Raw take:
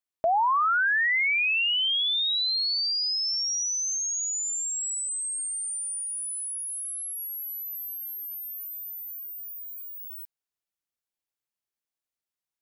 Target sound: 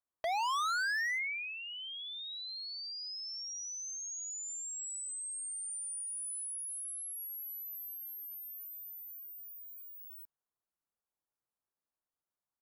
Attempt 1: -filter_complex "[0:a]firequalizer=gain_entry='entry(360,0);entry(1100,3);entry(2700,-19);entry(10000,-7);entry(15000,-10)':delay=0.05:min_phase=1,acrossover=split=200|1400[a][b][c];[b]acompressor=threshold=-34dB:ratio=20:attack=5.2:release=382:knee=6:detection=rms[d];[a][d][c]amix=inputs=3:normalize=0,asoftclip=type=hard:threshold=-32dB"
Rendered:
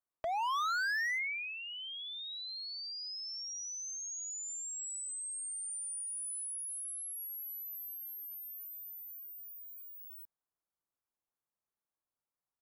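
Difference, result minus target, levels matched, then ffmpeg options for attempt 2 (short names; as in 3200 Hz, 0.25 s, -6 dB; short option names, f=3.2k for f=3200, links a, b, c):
compressor: peak gain reduction +11 dB
-filter_complex "[0:a]firequalizer=gain_entry='entry(360,0);entry(1100,3);entry(2700,-19);entry(10000,-7);entry(15000,-10)':delay=0.05:min_phase=1,acrossover=split=200|1400[a][b][c];[b]acompressor=threshold=-22dB:ratio=20:attack=5.2:release=382:knee=6:detection=rms[d];[a][d][c]amix=inputs=3:normalize=0,asoftclip=type=hard:threshold=-32dB"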